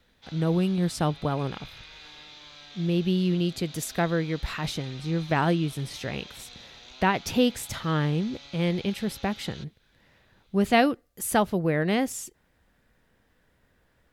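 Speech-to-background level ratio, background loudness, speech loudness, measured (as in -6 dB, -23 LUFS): 18.0 dB, -45.0 LUFS, -27.0 LUFS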